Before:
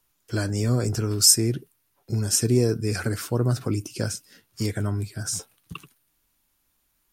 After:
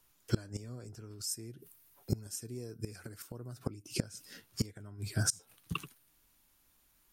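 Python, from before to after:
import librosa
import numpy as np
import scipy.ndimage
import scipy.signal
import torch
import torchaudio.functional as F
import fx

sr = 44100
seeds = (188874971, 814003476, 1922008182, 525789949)

y = fx.high_shelf(x, sr, hz=10000.0, db=10.5, at=(1.31, 3.64))
y = fx.gate_flip(y, sr, shuts_db=-18.0, range_db=-24)
y = y * 10.0 ** (1.0 / 20.0)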